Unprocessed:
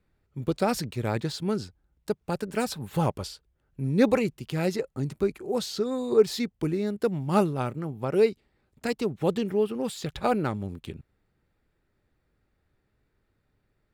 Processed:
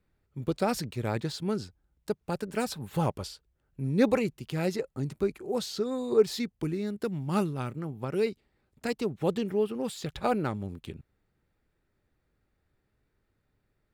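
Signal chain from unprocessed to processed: 6.36–8.27 dynamic EQ 640 Hz, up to -7 dB, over -35 dBFS, Q 0.94; gain -2.5 dB

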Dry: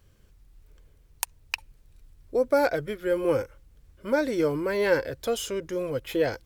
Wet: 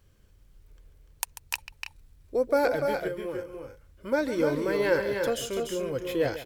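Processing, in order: 3.07–4.12 compressor 5:1, threshold -31 dBFS, peak gain reduction 11.5 dB; tapped delay 0.141/0.294/0.324 s -13.5/-6/-11.5 dB; gain -2 dB

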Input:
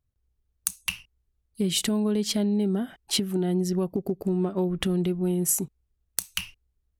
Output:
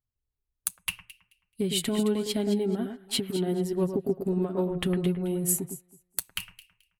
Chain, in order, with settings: bell 5800 Hz -9.5 dB 0.5 oct; comb 7.4 ms, depth 36%; on a send: echo with dull and thin repeats by turns 0.108 s, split 2100 Hz, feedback 51%, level -5.5 dB; on the sum: upward expander 1.5:1, over -45 dBFS

